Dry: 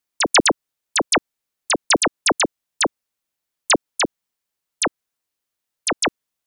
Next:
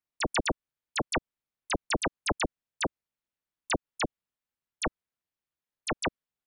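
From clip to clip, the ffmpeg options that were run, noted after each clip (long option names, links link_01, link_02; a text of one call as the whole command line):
ffmpeg -i in.wav -af "acompressor=threshold=-16dB:ratio=6,tremolo=f=270:d=0.919,bass=frequency=250:gain=5,treble=frequency=4000:gain=-9,volume=-4.5dB" out.wav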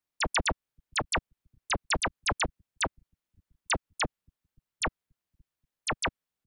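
ffmpeg -i in.wav -filter_complex "[0:a]acrossover=split=150|680|4500[link_01][link_02][link_03][link_04];[link_01]aecho=1:1:530|1060|1590:0.0631|0.0315|0.0158[link_05];[link_02]asoftclip=type=tanh:threshold=-36.5dB[link_06];[link_05][link_06][link_03][link_04]amix=inputs=4:normalize=0,volume=2.5dB" out.wav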